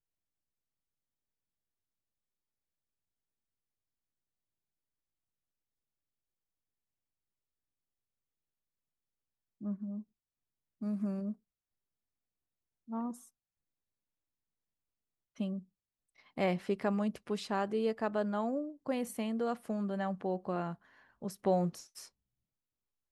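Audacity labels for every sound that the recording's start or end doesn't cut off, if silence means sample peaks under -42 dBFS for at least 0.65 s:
9.610000	10.010000	sound
10.820000	11.330000	sound
12.900000	13.120000	sound
15.400000	15.590000	sound
16.370000	22.050000	sound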